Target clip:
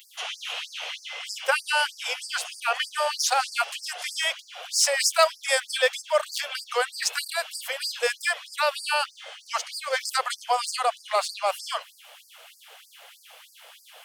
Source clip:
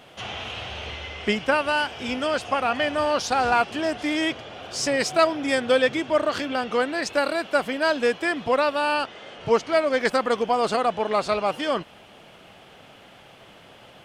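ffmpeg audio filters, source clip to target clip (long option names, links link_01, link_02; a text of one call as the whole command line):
ffmpeg -i in.wav -af "aemphasis=mode=production:type=bsi,afftfilt=real='re*gte(b*sr/1024,420*pow(4600/420,0.5+0.5*sin(2*PI*3.2*pts/sr)))':imag='im*gte(b*sr/1024,420*pow(4600/420,0.5+0.5*sin(2*PI*3.2*pts/sr)))':win_size=1024:overlap=0.75" out.wav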